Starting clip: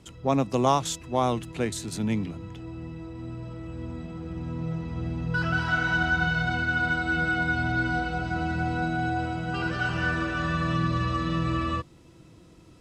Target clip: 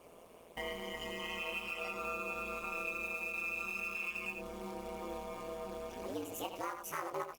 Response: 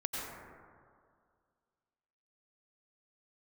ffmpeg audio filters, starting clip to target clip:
-filter_complex "[0:a]areverse,equalizer=frequency=630:width_type=o:width=0.33:gain=7,equalizer=frequency=1000:width_type=o:width=0.33:gain=-8,equalizer=frequency=1600:width_type=o:width=0.33:gain=12,equalizer=frequency=2500:width_type=o:width=0.33:gain=-12,equalizer=frequency=10000:width_type=o:width=0.33:gain=-8,asetrate=76440,aresample=44100,aecho=1:1:84:0.335,acompressor=threshold=-35dB:ratio=8,acrusher=bits=4:mode=log:mix=0:aa=0.000001,lowshelf=frequency=320:width_type=q:width=1.5:gain=-8,asplit=2[link_01][link_02];[link_02]adelay=21,volume=-5dB[link_03];[link_01][link_03]amix=inputs=2:normalize=0,aeval=exprs='val(0)*sin(2*PI*85*n/s)':channel_layout=same,volume=-1dB" -ar 48000 -c:a libopus -b:a 32k

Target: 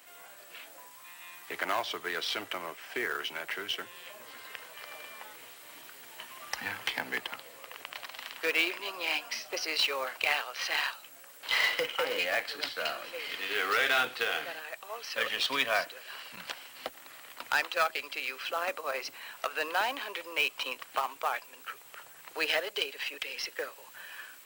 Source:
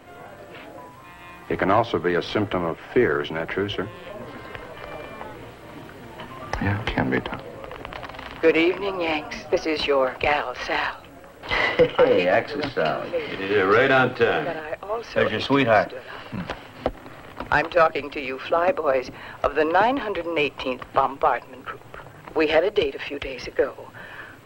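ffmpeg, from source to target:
ffmpeg -i in.wav -af "aderivative,acrusher=bits=4:mode=log:mix=0:aa=0.000001,volume=6dB" out.wav

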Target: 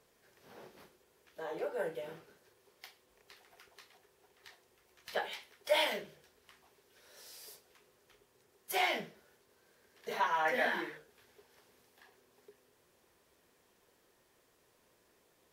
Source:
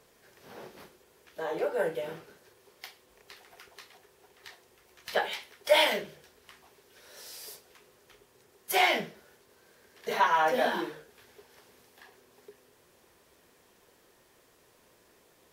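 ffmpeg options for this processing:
ffmpeg -i in.wav -filter_complex "[0:a]asettb=1/sr,asplit=3[link_01][link_02][link_03];[link_01]atrim=end=10.454[link_04];[link_02]atrim=start=10.45:end=10.98,asetpts=PTS-STARTPTS,afade=type=in:duration=0.004:curve=qsin,afade=type=out:start_time=0.526:duration=0.004:curve=qsin,equalizer=frequency=2000:width_type=o:width=0.52:gain=14.5[link_05];[link_03]atrim=start=10.976[link_06];[link_04][link_05]acrossfade=duration=0.004:curve1=hsin:curve2=qsin[link_07];[link_07][link_06]acrossfade=duration=0.004:curve1=qsin:curve2=hsin,volume=-7.5dB" out.wav

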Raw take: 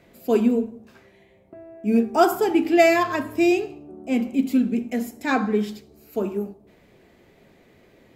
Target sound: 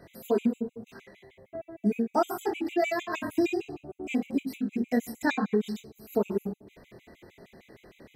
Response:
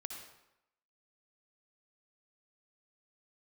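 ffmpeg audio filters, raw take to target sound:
-af "flanger=delay=22.5:depth=3.9:speed=0.68,acompressor=threshold=-28dB:ratio=12,afftfilt=real='re*gt(sin(2*PI*6.5*pts/sr)*(1-2*mod(floor(b*sr/1024/2000),2)),0)':imag='im*gt(sin(2*PI*6.5*pts/sr)*(1-2*mod(floor(b*sr/1024/2000),2)),0)':win_size=1024:overlap=0.75,volume=7.5dB"

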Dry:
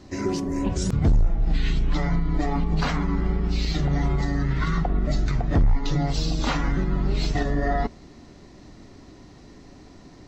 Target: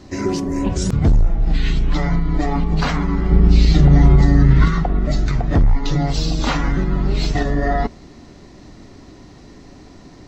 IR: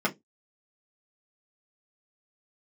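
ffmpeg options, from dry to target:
-filter_complex "[0:a]asettb=1/sr,asplit=3[link_01][link_02][link_03];[link_01]atrim=end=3.314[link_04];[link_02]atrim=start=3.31:end=4.68,asetpts=PTS-STARTPTS,afade=type=in:duration=0.004:curve=qsin,afade=type=out:start_time=1.366:duration=0.004:curve=qsin,lowshelf=frequency=400:gain=8.5[link_05];[link_03]atrim=start=4.676[link_06];[link_04][link_05]acrossfade=duration=0.004:curve1=hsin:curve2=qsin[link_07];[link_07][link_06]acrossfade=duration=0.004:curve1=qsin:curve2=hsin,volume=5dB"

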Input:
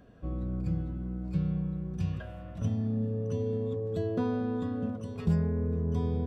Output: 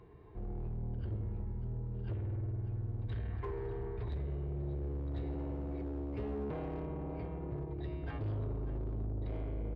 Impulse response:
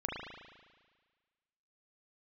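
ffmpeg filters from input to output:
-filter_complex "[0:a]aresample=16000,asoftclip=type=tanh:threshold=-31dB,aresample=44100,acompressor=threshold=-38dB:ratio=10,highpass=frequency=48:poles=1,bandreject=frequency=50:width_type=h:width=6,bandreject=frequency=100:width_type=h:width=6,bandreject=frequency=150:width_type=h:width=6,aecho=1:1:381:0.178,asplit=2[link_01][link_02];[link_02]acrusher=bits=3:mix=0:aa=0.000001,volume=-10dB[link_03];[link_01][link_03]amix=inputs=2:normalize=0,equalizer=frequency=250:width_type=o:width=0.33:gain=-10,equalizer=frequency=400:width_type=o:width=0.33:gain=-12,equalizer=frequency=630:width_type=o:width=0.33:gain=6,asoftclip=type=hard:threshold=-39dB,dynaudnorm=framelen=210:gausssize=3:maxgain=4dB,asetrate=28312,aresample=44100,highshelf=frequency=5200:gain=-8.5,volume=2dB"

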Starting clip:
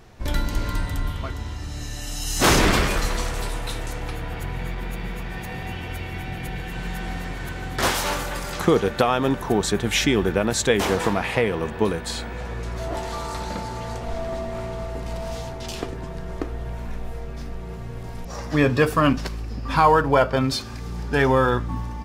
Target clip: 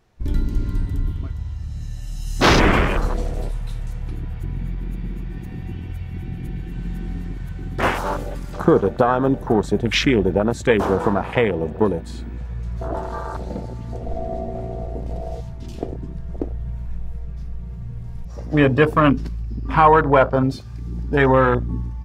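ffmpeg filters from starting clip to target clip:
ffmpeg -i in.wav -af "afwtdn=0.0631,volume=3.5dB" out.wav

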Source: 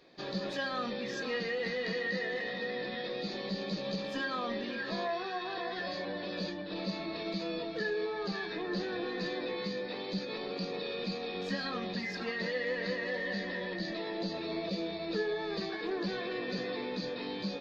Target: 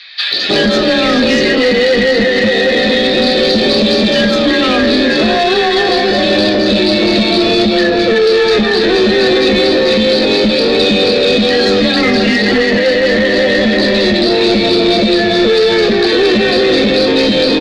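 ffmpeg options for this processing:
ffmpeg -i in.wav -filter_complex "[0:a]acrossover=split=460|1200[link_01][link_02][link_03];[link_01]acompressor=threshold=-40dB:ratio=4[link_04];[link_02]acompressor=threshold=-49dB:ratio=4[link_05];[link_03]acompressor=threshold=-43dB:ratio=4[link_06];[link_04][link_05][link_06]amix=inputs=3:normalize=0,highshelf=frequency=4500:gain=-10,acrossover=split=1500|4900[link_07][link_08][link_09];[link_09]adelay=210[link_10];[link_07]adelay=310[link_11];[link_11][link_08][link_10]amix=inputs=3:normalize=0,afreqshift=20,apsyclip=35.5dB,bandreject=frequency=169.6:width_type=h:width=4,bandreject=frequency=339.2:width_type=h:width=4,bandreject=frequency=508.8:width_type=h:width=4,bandreject=frequency=678.4:width_type=h:width=4,bandreject=frequency=848:width_type=h:width=4,bandreject=frequency=1017.6:width_type=h:width=4,bandreject=frequency=1187.2:width_type=h:width=4,bandreject=frequency=1356.8:width_type=h:width=4,bandreject=frequency=1526.4:width_type=h:width=4,bandreject=frequency=1696:width_type=h:width=4,bandreject=frequency=1865.6:width_type=h:width=4,bandreject=frequency=2035.2:width_type=h:width=4,bandreject=frequency=2204.8:width_type=h:width=4,bandreject=frequency=2374.4:width_type=h:width=4,bandreject=frequency=2544:width_type=h:width=4,bandreject=frequency=2713.6:width_type=h:width=4,bandreject=frequency=2883.2:width_type=h:width=4,bandreject=frequency=3052.8:width_type=h:width=4,bandreject=frequency=3222.4:width_type=h:width=4,bandreject=frequency=3392:width_type=h:width=4,bandreject=frequency=3561.6:width_type=h:width=4,bandreject=frequency=3731.2:width_type=h:width=4,bandreject=frequency=3900.8:width_type=h:width=4,bandreject=frequency=4070.4:width_type=h:width=4,bandreject=frequency=4240:width_type=h:width=4,bandreject=frequency=4409.6:width_type=h:width=4,bandreject=frequency=4579.2:width_type=h:width=4,bandreject=frequency=4748.8:width_type=h:width=4,bandreject=frequency=4918.4:width_type=h:width=4,bandreject=frequency=5088:width_type=h:width=4,bandreject=frequency=5257.6:width_type=h:width=4,bandreject=frequency=5427.2:width_type=h:width=4,bandreject=frequency=5596.8:width_type=h:width=4,bandreject=frequency=5766.4:width_type=h:width=4,bandreject=frequency=5936:width_type=h:width=4,bandreject=frequency=6105.6:width_type=h:width=4,bandreject=frequency=6275.2:width_type=h:width=4,bandreject=frequency=6444.8:width_type=h:width=4,bandreject=frequency=6614.4:width_type=h:width=4,acontrast=32,equalizer=frequency=160:width_type=o:width=0.67:gain=-4,equalizer=frequency=1000:width_type=o:width=0.67:gain=-8,equalizer=frequency=4000:width_type=o:width=0.67:gain=7,volume=-5.5dB" out.wav

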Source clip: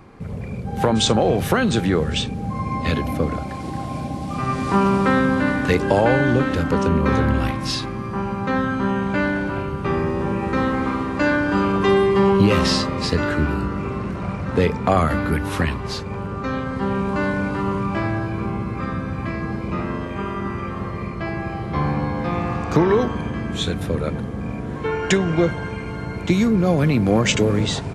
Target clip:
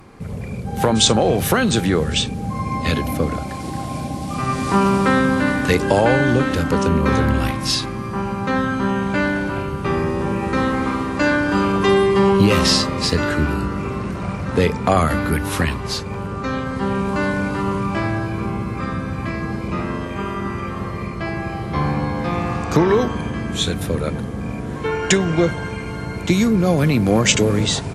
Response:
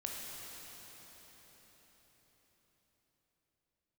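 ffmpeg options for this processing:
-af "aemphasis=mode=production:type=cd,volume=1.5dB"

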